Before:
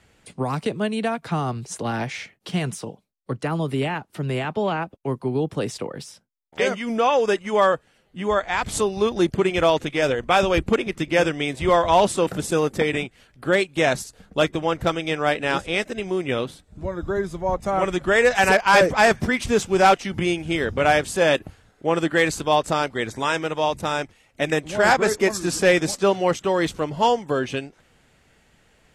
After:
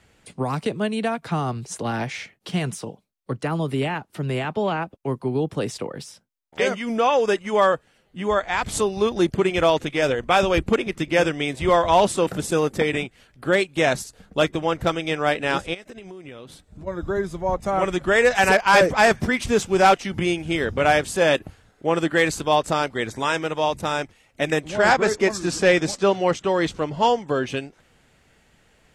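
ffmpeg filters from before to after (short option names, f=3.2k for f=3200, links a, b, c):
-filter_complex "[0:a]asplit=3[a][b][c];[a]afade=t=out:st=15.73:d=0.02[d];[b]acompressor=threshold=-35dB:ratio=16:attack=3.2:release=140:knee=1:detection=peak,afade=t=in:st=15.73:d=0.02,afade=t=out:st=16.86:d=0.02[e];[c]afade=t=in:st=16.86:d=0.02[f];[d][e][f]amix=inputs=3:normalize=0,asettb=1/sr,asplit=3[g][h][i];[g]atrim=end=24.694[j];[h]atrim=start=24.69:end=27.47,asetpts=PTS-STARTPTS,afade=t=in:d=0.004:c=qsin,afade=t=out:st=2.776:d=0.004:c=qsin,lowpass=7.6k[k];[i]atrim=start=27.466[l];[j][k]acrossfade=d=0.004:c1=hsin:c2=qsin[m];[m][l]acrossfade=d=0.004:c1=qsin:c2=hsin"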